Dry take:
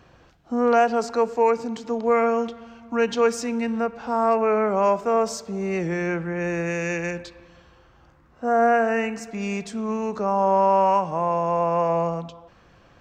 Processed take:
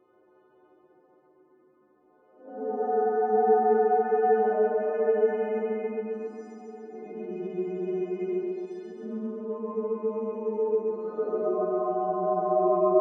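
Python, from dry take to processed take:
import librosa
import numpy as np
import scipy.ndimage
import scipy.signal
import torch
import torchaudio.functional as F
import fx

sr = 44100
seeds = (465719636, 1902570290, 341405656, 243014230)

p1 = fx.freq_snap(x, sr, grid_st=3)
p2 = fx.ladder_bandpass(p1, sr, hz=400.0, resonance_pct=60)
p3 = fx.paulstretch(p2, sr, seeds[0], factor=4.9, window_s=0.1, from_s=7.9)
p4 = p3 + fx.echo_feedback(p3, sr, ms=136, feedback_pct=59, wet_db=-4.0, dry=0)
y = F.gain(torch.from_numpy(p4), 6.0).numpy()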